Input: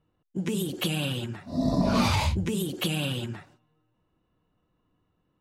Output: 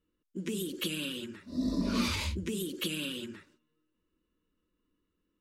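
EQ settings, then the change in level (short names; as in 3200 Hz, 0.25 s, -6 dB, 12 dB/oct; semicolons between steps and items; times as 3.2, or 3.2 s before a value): fixed phaser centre 310 Hz, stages 4; -3.5 dB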